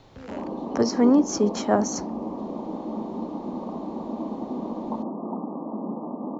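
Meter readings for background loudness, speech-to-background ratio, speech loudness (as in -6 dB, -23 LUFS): -32.5 LUFS, 9.5 dB, -23.0 LUFS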